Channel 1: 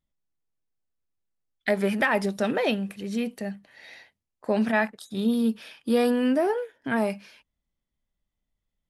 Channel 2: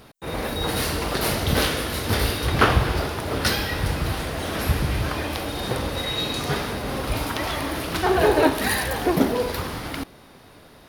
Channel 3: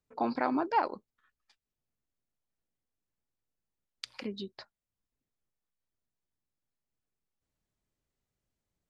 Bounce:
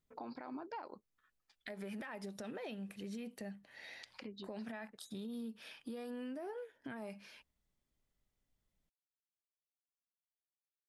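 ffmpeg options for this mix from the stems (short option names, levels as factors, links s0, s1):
-filter_complex "[0:a]acompressor=threshold=0.0447:ratio=6,volume=0.708[s0];[2:a]volume=0.668[s1];[s0][s1]amix=inputs=2:normalize=0,alimiter=level_in=1.5:limit=0.0631:level=0:latency=1:release=80,volume=0.668,volume=1,acompressor=threshold=0.00316:ratio=2"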